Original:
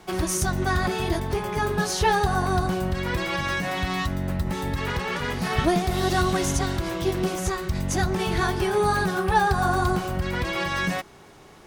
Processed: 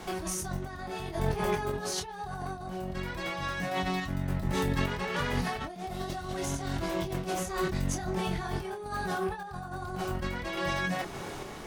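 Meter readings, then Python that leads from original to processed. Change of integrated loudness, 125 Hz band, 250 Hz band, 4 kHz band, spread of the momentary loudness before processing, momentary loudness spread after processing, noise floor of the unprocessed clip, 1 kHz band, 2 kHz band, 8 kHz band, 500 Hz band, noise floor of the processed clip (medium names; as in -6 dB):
-8.5 dB, -8.0 dB, -7.5 dB, -8.0 dB, 6 LU, 8 LU, -49 dBFS, -9.5 dB, -9.0 dB, -7.5 dB, -8.0 dB, -42 dBFS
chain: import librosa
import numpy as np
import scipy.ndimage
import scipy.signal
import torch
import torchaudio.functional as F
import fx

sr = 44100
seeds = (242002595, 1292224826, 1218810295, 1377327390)

y = fx.dynamic_eq(x, sr, hz=680.0, q=2.1, threshold_db=-37.0, ratio=4.0, max_db=5)
y = fx.over_compress(y, sr, threshold_db=-33.0, ratio=-1.0)
y = fx.chorus_voices(y, sr, voices=6, hz=0.19, base_ms=25, depth_ms=4.3, mix_pct=35)
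y = fx.tremolo_random(y, sr, seeds[0], hz=3.5, depth_pct=55)
y = y * librosa.db_to_amplitude(4.5)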